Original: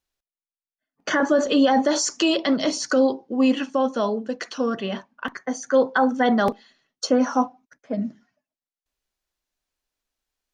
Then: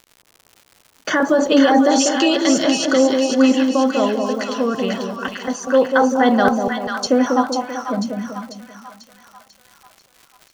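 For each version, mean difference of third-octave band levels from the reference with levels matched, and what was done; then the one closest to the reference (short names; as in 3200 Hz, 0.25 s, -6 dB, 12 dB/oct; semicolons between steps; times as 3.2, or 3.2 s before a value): 6.5 dB: crackle 120/s -37 dBFS; on a send: split-band echo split 940 Hz, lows 0.194 s, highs 0.493 s, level -4 dB; on the sum: gain +3.5 dB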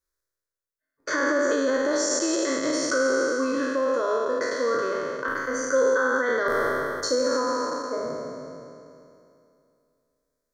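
10.0 dB: spectral trails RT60 2.63 s; limiter -10 dBFS, peak gain reduction 6.5 dB; fixed phaser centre 770 Hz, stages 6; gain -1.5 dB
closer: first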